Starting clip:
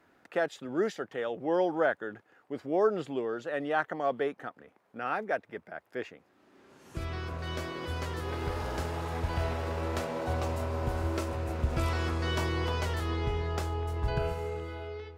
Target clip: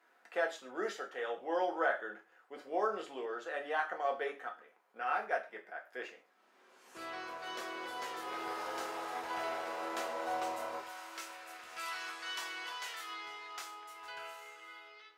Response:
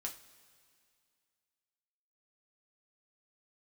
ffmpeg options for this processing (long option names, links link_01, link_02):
-filter_complex "[0:a]asetnsamples=nb_out_samples=441:pad=0,asendcmd='10.79 highpass f 1500',highpass=560[link_01];[1:a]atrim=start_sample=2205,atrim=end_sample=6615[link_02];[link_01][link_02]afir=irnorm=-1:irlink=0"